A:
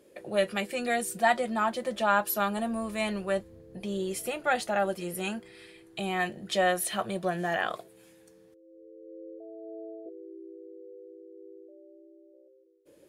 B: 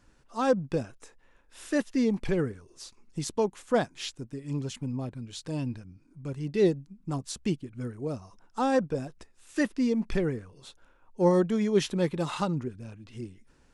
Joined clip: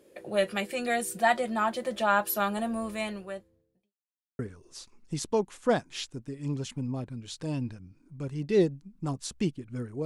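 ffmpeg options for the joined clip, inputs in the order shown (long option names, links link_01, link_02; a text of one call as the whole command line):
ffmpeg -i cue0.wav -i cue1.wav -filter_complex "[0:a]apad=whole_dur=10.05,atrim=end=10.05,asplit=2[link_01][link_02];[link_01]atrim=end=3.94,asetpts=PTS-STARTPTS,afade=type=out:start_time=2.87:duration=1.07:curve=qua[link_03];[link_02]atrim=start=3.94:end=4.39,asetpts=PTS-STARTPTS,volume=0[link_04];[1:a]atrim=start=2.44:end=8.1,asetpts=PTS-STARTPTS,afade=type=in:duration=0.004:curve=hsin[link_05];[link_03][link_04][link_05]concat=n=3:v=0:a=1" out.wav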